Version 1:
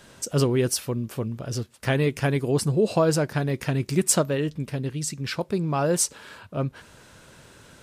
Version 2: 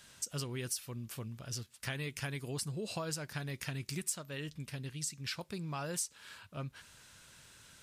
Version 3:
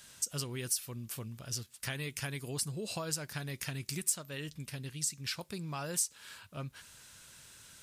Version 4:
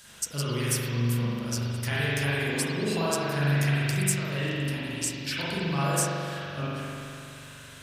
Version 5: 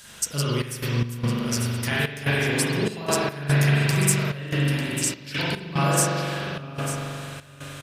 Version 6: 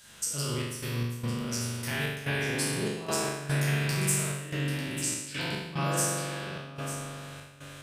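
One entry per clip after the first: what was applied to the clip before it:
guitar amp tone stack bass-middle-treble 5-5-5; downward compressor 5 to 1, threshold −38 dBFS, peak gain reduction 14.5 dB; level +3 dB
high-shelf EQ 5,900 Hz +7.5 dB
spring reverb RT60 2.7 s, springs 42 ms, chirp 70 ms, DRR −9.5 dB; level +3 dB
single-tap delay 896 ms −11.5 dB; gate pattern "xxx.x.xxxx." 73 BPM −12 dB; level +5 dB
peak hold with a decay on every bin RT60 0.85 s; level −9 dB

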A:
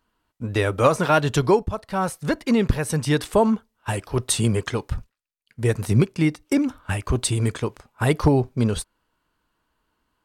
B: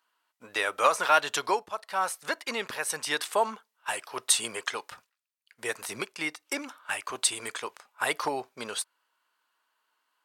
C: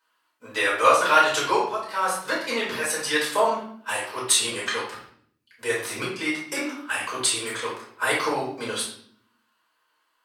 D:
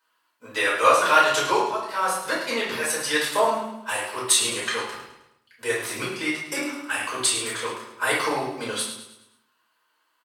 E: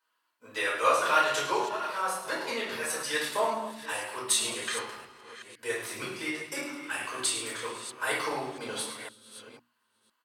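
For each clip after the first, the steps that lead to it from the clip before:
high-pass filter 880 Hz 12 dB per octave
convolution reverb RT60 0.60 s, pre-delay 4 ms, DRR −6.5 dB; level −3.5 dB
high-shelf EQ 12,000 Hz +3.5 dB; on a send: repeating echo 105 ms, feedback 45%, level −10.5 dB
delay that plays each chunk backwards 505 ms, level −12.5 dB; mains-hum notches 60/120/180/240/300 Hz; level −7 dB

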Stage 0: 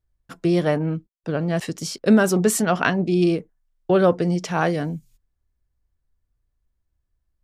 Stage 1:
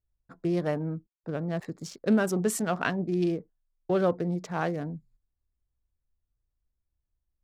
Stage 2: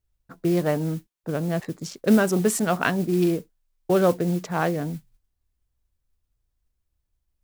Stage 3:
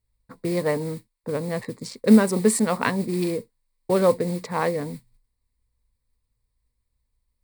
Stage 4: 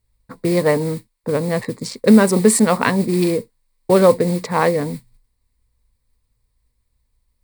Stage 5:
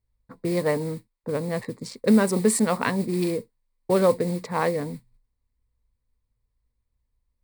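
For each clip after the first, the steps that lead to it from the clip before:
adaptive Wiener filter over 15 samples; level −8 dB
noise that follows the level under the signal 22 dB; level +5.5 dB
EQ curve with evenly spaced ripples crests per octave 0.95, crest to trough 10 dB
boost into a limiter +8.5 dB; level −1 dB
one half of a high-frequency compander decoder only; level −7.5 dB

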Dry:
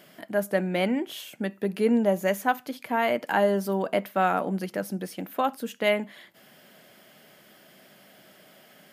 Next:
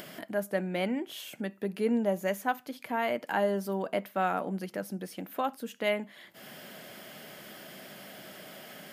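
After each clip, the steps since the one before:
upward compression, threshold −29 dBFS
level −5.5 dB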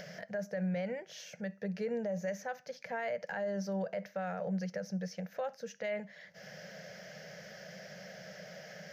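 drawn EQ curve 120 Hz 0 dB, 180 Hz +6 dB, 290 Hz −27 dB, 510 Hz +6 dB, 1,100 Hz −12 dB, 1,700 Hz +3 dB, 3,300 Hz −10 dB, 6,000 Hz +7 dB, 8,700 Hz −26 dB, 15,000 Hz −18 dB
brickwall limiter −27.5 dBFS, peak gain reduction 11.5 dB
level −1 dB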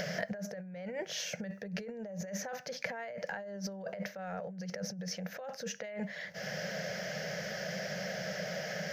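compressor whose output falls as the input rises −44 dBFS, ratio −1
level +5 dB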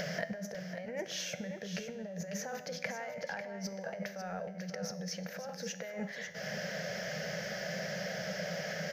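tuned comb filter 83 Hz, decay 1.3 s, harmonics all, mix 60%
on a send: single-tap delay 547 ms −9 dB
on the sum: level +6.5 dB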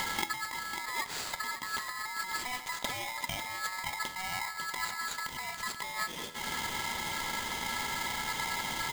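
in parallel at −4.5 dB: sample-rate reduction 5,300 Hz
on the sum: ring modulator with a square carrier 1,500 Hz

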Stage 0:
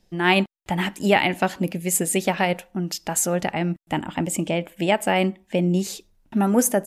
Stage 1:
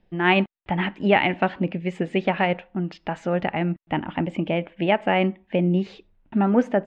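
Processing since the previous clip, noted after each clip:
low-pass filter 3,000 Hz 24 dB per octave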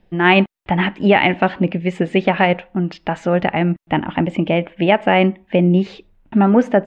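boost into a limiter +8 dB
level −1 dB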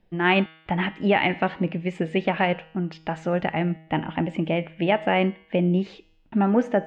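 tuned comb filter 160 Hz, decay 0.79 s, harmonics all, mix 60%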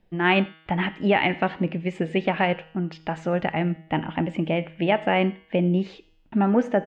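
single-tap delay 87 ms −23.5 dB

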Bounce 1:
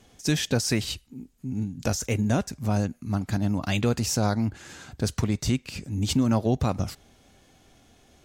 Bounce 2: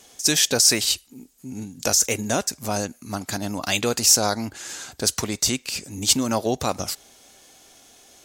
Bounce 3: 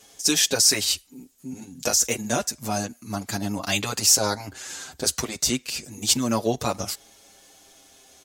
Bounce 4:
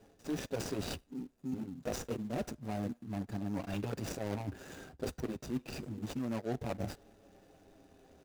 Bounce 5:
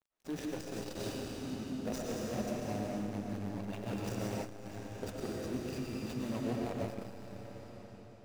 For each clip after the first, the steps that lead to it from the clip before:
bass and treble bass −14 dB, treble +10 dB; level +5 dB
barber-pole flanger 6.9 ms −0.28 Hz; level +1.5 dB
running median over 41 samples; reversed playback; downward compressor 6 to 1, threshold −36 dBFS, peak gain reduction 16.5 dB; reversed playback; level +2 dB
dead-zone distortion −54 dBFS; comb and all-pass reverb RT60 4 s, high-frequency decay 0.95×, pre-delay 70 ms, DRR −4 dB; saturating transformer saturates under 210 Hz; level −2 dB

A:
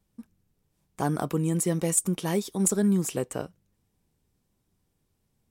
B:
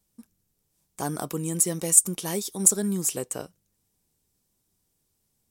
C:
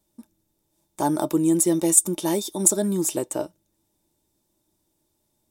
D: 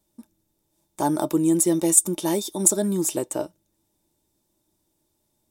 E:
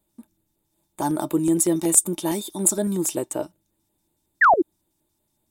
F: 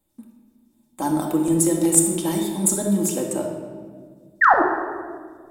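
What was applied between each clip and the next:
bass and treble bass −3 dB, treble +11 dB; level −2.5 dB
hollow resonant body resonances 330/610/870/3,600 Hz, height 15 dB, ringing for 55 ms
no processing that can be heard
sound drawn into the spectrogram fall, 0:04.41–0:04.62, 300–2,000 Hz −13 dBFS; auto-filter notch square 5.4 Hz 500–5,600 Hz
rectangular room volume 2,000 cubic metres, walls mixed, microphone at 2.1 metres; level −1.5 dB

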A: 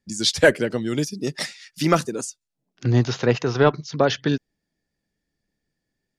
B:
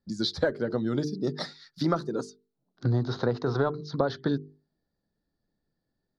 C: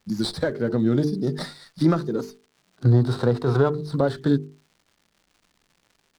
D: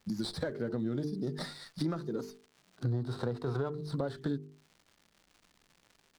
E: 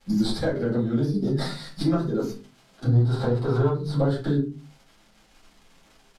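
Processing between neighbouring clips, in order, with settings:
mains-hum notches 50/100/150/200/250/300/350/400/450 Hz; downward compressor 6 to 1, threshold −22 dBFS, peak gain reduction 12 dB; drawn EQ curve 1,400 Hz 0 dB, 2,700 Hz −23 dB, 4,000 Hz 0 dB, 7,800 Hz −24 dB
harmonic and percussive parts rebalanced harmonic +9 dB; surface crackle 430 per second −51 dBFS; windowed peak hold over 3 samples
downward compressor 3 to 1, threshold −33 dBFS, peak gain reduction 15 dB; level −1.5 dB
rectangular room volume 120 cubic metres, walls furnished, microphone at 4 metres; downsampling to 32,000 Hz

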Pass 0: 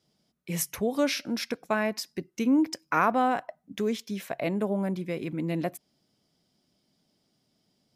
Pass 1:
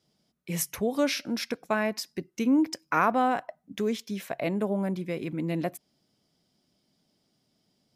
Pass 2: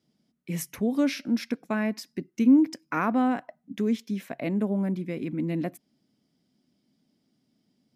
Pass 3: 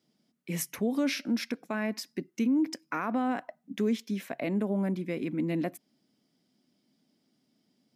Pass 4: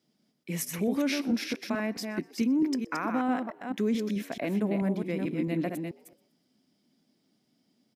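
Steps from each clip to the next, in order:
no processing that can be heard
octave-band graphic EQ 125/250/2,000 Hz +3/+12/+4 dB; level −6 dB
high-pass filter 240 Hz 6 dB per octave; brickwall limiter −22 dBFS, peak gain reduction 9 dB; level +1.5 dB
delay that plays each chunk backwards 219 ms, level −5 dB; echo with shifted repeats 123 ms, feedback 42%, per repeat +78 Hz, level −24 dB

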